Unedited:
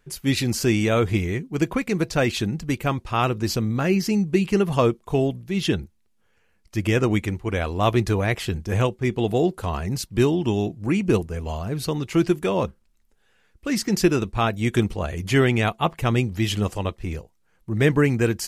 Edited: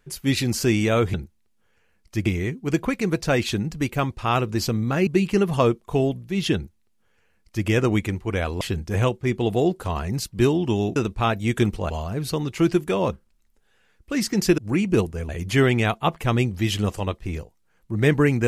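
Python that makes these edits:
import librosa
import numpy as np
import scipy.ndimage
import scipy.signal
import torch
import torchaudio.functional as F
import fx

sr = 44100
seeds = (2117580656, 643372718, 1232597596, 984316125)

y = fx.edit(x, sr, fx.cut(start_s=3.95, length_s=0.31),
    fx.duplicate(start_s=5.74, length_s=1.12, to_s=1.14),
    fx.cut(start_s=7.8, length_s=0.59),
    fx.swap(start_s=10.74, length_s=0.71, other_s=14.13, other_length_s=0.94), tone=tone)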